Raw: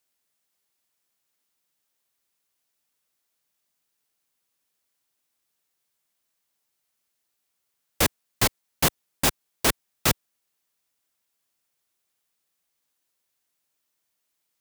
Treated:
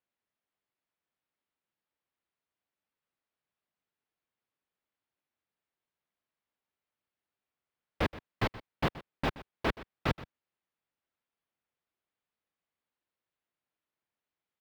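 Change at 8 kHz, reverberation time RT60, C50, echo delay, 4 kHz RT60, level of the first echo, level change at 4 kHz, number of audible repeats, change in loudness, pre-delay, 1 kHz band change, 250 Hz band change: -31.0 dB, none, none, 0.125 s, none, -17.0 dB, -14.5 dB, 1, -10.5 dB, none, -6.0 dB, -5.0 dB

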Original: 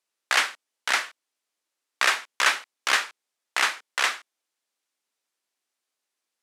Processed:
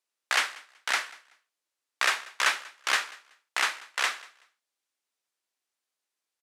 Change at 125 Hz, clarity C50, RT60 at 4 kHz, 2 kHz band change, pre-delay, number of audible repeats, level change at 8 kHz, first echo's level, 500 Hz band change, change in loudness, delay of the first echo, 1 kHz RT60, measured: n/a, none, none, -3.5 dB, none, 1, -3.5 dB, -22.0 dB, -4.0 dB, -3.5 dB, 0.189 s, none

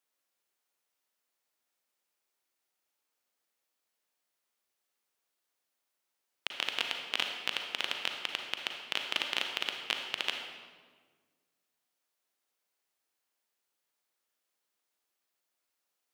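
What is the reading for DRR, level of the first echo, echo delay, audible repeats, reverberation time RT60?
3.0 dB, none, none, none, 1.5 s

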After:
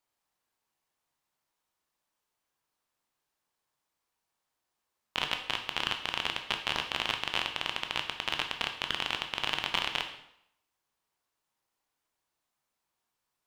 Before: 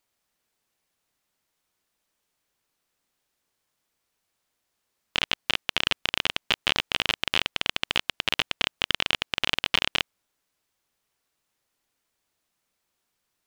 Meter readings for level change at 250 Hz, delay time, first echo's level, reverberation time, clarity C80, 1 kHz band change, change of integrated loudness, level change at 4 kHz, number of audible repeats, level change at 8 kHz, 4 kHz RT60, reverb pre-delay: -6.0 dB, none, none, 0.75 s, 11.5 dB, -1.5 dB, -6.0 dB, -6.5 dB, none, -7.0 dB, 0.65 s, 7 ms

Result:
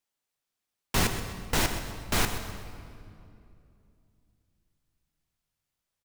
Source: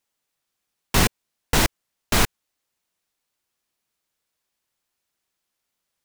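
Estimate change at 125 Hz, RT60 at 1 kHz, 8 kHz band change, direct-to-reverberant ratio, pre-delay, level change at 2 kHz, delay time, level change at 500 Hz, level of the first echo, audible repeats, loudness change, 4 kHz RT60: -6.0 dB, 2.4 s, -6.5 dB, 6.5 dB, 7 ms, -6.0 dB, 0.128 s, -6.0 dB, -12.0 dB, 2, -7.0 dB, 1.7 s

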